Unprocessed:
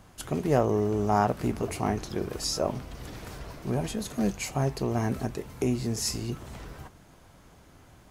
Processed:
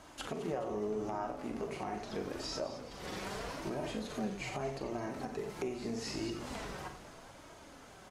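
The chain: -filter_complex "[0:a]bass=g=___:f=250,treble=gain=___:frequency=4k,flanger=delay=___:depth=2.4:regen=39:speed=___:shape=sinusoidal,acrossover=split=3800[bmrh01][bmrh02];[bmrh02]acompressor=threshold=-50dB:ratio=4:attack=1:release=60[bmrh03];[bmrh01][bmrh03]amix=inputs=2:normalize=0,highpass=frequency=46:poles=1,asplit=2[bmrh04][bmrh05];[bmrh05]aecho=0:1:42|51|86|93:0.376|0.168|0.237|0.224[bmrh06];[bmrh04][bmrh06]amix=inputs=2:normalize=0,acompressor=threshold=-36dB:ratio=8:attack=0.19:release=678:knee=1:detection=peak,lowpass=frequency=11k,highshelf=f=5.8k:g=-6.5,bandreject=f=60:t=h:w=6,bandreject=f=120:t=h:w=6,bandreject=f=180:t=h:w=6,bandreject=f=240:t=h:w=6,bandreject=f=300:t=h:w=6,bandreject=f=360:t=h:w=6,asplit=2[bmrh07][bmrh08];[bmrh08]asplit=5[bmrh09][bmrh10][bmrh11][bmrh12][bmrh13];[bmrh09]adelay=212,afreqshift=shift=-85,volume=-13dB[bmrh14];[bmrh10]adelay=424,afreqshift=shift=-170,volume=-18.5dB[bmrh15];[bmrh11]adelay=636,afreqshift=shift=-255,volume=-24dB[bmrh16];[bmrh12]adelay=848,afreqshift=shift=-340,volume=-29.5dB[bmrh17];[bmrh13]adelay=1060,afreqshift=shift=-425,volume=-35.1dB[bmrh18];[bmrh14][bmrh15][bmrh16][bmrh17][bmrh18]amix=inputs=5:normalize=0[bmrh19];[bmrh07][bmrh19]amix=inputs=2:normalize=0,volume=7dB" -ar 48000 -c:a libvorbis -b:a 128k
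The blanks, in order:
-8, 4, 3.1, 0.8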